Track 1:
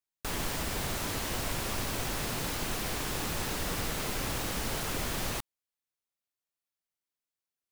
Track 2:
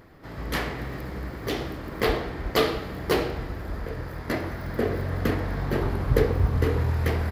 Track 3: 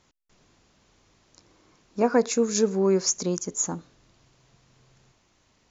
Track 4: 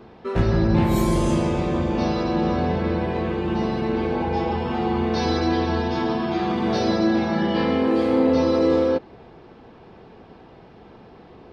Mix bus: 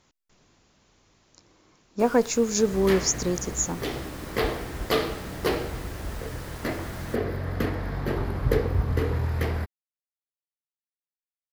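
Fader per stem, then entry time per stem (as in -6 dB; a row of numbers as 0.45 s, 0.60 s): -10.0 dB, -2.0 dB, 0.0 dB, mute; 1.75 s, 2.35 s, 0.00 s, mute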